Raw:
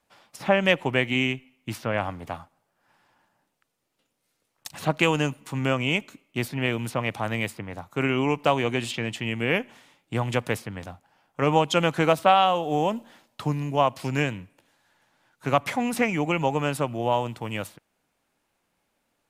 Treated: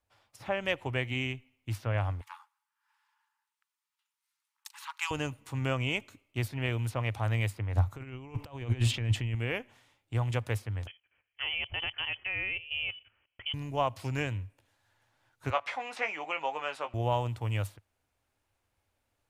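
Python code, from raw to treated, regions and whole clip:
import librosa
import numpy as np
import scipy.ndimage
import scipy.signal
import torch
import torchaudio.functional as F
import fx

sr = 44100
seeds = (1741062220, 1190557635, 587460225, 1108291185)

y = fx.chain(x, sr, fx.brickwall_highpass(low_hz=820.0),
    fx.transformer_sat(knee_hz=3900.0), at=(2.21, 5.11))
y = fx.chain(y, sr, fx.bass_treble(bass_db=6, treble_db=-2),
    fx.over_compress(threshold_db=-29.0, ratio=-0.5), at=(7.75, 9.35))
y = fx.chain(y, sr, fx.freq_invert(carrier_hz=3200),
    fx.low_shelf(hz=89.0, db=-9.5),
    fx.level_steps(step_db=13), at=(10.87, 13.54))
y = fx.chain(y, sr, fx.bandpass_edges(low_hz=670.0, high_hz=4300.0),
    fx.doubler(ms=19.0, db=-8.0), at=(15.5, 16.94))
y = fx.low_shelf_res(y, sr, hz=130.0, db=8.5, q=3.0)
y = fx.rider(y, sr, range_db=10, speed_s=2.0)
y = F.gain(torch.from_numpy(y), -7.5).numpy()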